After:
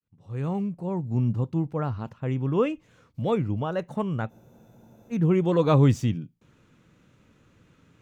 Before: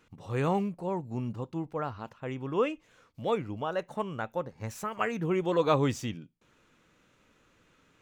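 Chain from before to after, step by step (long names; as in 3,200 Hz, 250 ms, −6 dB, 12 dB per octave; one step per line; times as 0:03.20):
fade in at the beginning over 1.34 s
parametric band 120 Hz +13 dB 2.6 octaves
frozen spectrum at 0:04.33, 0.78 s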